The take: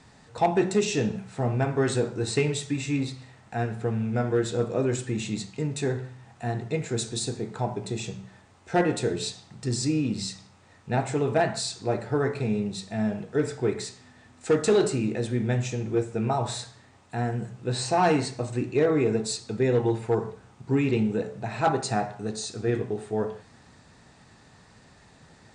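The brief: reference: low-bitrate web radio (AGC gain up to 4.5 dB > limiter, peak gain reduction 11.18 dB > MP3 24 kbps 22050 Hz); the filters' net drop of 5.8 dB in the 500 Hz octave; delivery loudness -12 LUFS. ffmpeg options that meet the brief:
-af "equalizer=f=500:t=o:g=-7.5,dynaudnorm=m=4.5dB,alimiter=limit=-22dB:level=0:latency=1,volume=20.5dB" -ar 22050 -c:a libmp3lame -b:a 24k

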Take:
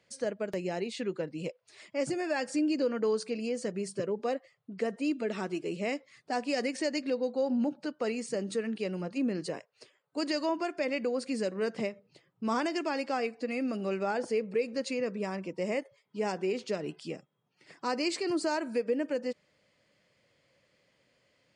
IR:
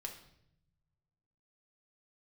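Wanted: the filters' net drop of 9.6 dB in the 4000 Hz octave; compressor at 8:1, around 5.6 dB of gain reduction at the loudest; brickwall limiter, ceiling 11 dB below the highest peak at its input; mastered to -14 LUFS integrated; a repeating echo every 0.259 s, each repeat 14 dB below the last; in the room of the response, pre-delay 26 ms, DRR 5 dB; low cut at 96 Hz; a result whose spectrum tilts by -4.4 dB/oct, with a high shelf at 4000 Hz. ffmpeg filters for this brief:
-filter_complex "[0:a]highpass=96,highshelf=f=4k:g=-7.5,equalizer=f=4k:t=o:g=-8,acompressor=threshold=-31dB:ratio=8,alimiter=level_in=9.5dB:limit=-24dB:level=0:latency=1,volume=-9.5dB,aecho=1:1:259|518:0.2|0.0399,asplit=2[a][b];[1:a]atrim=start_sample=2205,adelay=26[c];[b][c]afir=irnorm=-1:irlink=0,volume=-2.5dB[d];[a][d]amix=inputs=2:normalize=0,volume=27dB"

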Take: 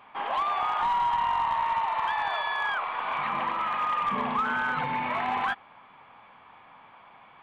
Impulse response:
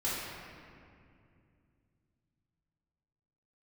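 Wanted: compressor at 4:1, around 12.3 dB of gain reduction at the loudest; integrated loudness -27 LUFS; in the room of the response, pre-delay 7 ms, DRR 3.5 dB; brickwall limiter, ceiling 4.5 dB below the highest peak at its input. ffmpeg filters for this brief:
-filter_complex "[0:a]acompressor=threshold=-39dB:ratio=4,alimiter=level_in=9dB:limit=-24dB:level=0:latency=1,volume=-9dB,asplit=2[a][b];[1:a]atrim=start_sample=2205,adelay=7[c];[b][c]afir=irnorm=-1:irlink=0,volume=-10.5dB[d];[a][d]amix=inputs=2:normalize=0,volume=12dB"

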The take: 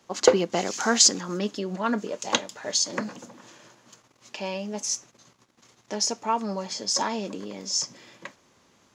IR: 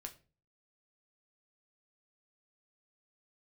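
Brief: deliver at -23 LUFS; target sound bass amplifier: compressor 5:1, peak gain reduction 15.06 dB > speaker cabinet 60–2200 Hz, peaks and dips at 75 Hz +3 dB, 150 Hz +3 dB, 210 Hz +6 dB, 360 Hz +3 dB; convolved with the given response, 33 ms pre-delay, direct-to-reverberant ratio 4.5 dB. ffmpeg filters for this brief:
-filter_complex "[0:a]asplit=2[a][b];[1:a]atrim=start_sample=2205,adelay=33[c];[b][c]afir=irnorm=-1:irlink=0,volume=0dB[d];[a][d]amix=inputs=2:normalize=0,acompressor=threshold=-27dB:ratio=5,highpass=f=60:w=0.5412,highpass=f=60:w=1.3066,equalizer=f=75:t=q:w=4:g=3,equalizer=f=150:t=q:w=4:g=3,equalizer=f=210:t=q:w=4:g=6,equalizer=f=360:t=q:w=4:g=3,lowpass=f=2.2k:w=0.5412,lowpass=f=2.2k:w=1.3066,volume=9dB"

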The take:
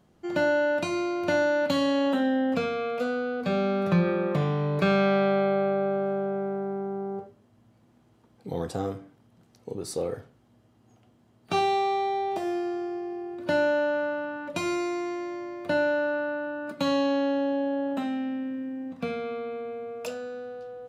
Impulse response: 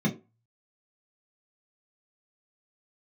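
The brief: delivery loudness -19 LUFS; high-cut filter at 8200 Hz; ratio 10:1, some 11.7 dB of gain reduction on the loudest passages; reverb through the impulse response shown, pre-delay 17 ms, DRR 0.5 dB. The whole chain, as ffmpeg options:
-filter_complex "[0:a]lowpass=8.2k,acompressor=threshold=-30dB:ratio=10,asplit=2[a][b];[1:a]atrim=start_sample=2205,adelay=17[c];[b][c]afir=irnorm=-1:irlink=0,volume=-9dB[d];[a][d]amix=inputs=2:normalize=0,volume=6.5dB"

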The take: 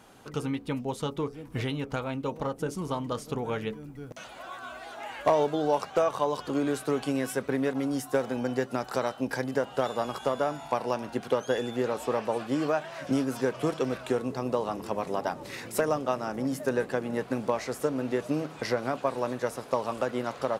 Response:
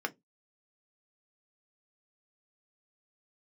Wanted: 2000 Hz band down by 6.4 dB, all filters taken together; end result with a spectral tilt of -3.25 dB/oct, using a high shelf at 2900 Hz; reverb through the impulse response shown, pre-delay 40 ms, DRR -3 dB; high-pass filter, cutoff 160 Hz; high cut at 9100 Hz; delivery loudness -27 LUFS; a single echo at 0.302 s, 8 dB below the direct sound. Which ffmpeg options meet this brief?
-filter_complex "[0:a]highpass=160,lowpass=9.1k,equalizer=f=2k:t=o:g=-6.5,highshelf=f=2.9k:g=-7,aecho=1:1:302:0.398,asplit=2[a][b];[1:a]atrim=start_sample=2205,adelay=40[c];[b][c]afir=irnorm=-1:irlink=0,volume=-2dB[d];[a][d]amix=inputs=2:normalize=0,volume=-1dB"

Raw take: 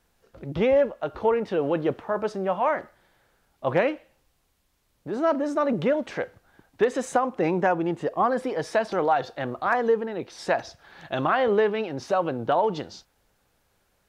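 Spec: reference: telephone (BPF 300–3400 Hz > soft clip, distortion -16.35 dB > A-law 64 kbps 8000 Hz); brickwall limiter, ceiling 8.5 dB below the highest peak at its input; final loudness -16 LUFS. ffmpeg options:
-af "alimiter=limit=-19dB:level=0:latency=1,highpass=300,lowpass=3.4k,asoftclip=threshold=-23.5dB,volume=16.5dB" -ar 8000 -c:a pcm_alaw

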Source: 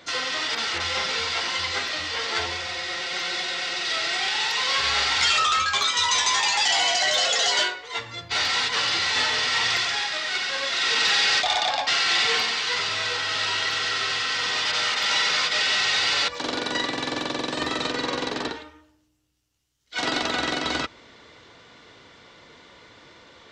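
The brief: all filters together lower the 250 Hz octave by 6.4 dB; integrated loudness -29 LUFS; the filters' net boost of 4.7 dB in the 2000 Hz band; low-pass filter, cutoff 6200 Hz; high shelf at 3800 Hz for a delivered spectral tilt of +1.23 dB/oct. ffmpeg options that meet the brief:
-af "lowpass=6.2k,equalizer=f=250:t=o:g=-8.5,equalizer=f=2k:t=o:g=3.5,highshelf=f=3.8k:g=8.5,volume=-11dB"

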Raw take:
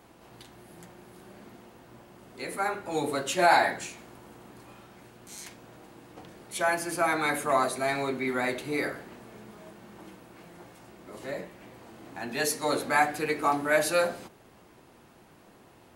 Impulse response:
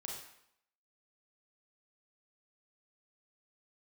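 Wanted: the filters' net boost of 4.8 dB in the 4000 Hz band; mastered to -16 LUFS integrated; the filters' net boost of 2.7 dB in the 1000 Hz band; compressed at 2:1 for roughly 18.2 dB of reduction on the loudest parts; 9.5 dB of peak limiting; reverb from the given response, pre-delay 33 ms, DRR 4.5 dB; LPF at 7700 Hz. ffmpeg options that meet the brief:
-filter_complex "[0:a]lowpass=7.7k,equalizer=f=1k:t=o:g=3.5,equalizer=f=4k:t=o:g=5.5,acompressor=threshold=-49dB:ratio=2,alimiter=level_in=10dB:limit=-24dB:level=0:latency=1,volume=-10dB,asplit=2[a][b];[1:a]atrim=start_sample=2205,adelay=33[c];[b][c]afir=irnorm=-1:irlink=0,volume=-3dB[d];[a][d]amix=inputs=2:normalize=0,volume=29dB"

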